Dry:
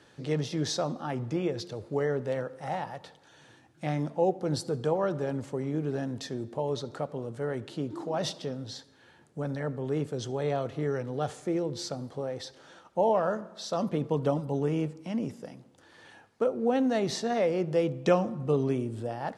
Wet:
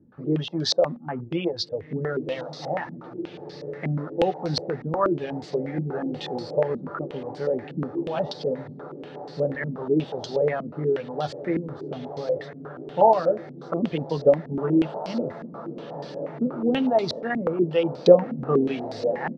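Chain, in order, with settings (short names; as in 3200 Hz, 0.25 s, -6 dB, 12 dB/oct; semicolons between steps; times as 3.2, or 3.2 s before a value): reverb removal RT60 1.5 s; doubler 12 ms -9 dB; diffused feedback echo 1.875 s, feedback 65%, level -11.5 dB; stepped low-pass 8.3 Hz 230–4600 Hz; gain +2 dB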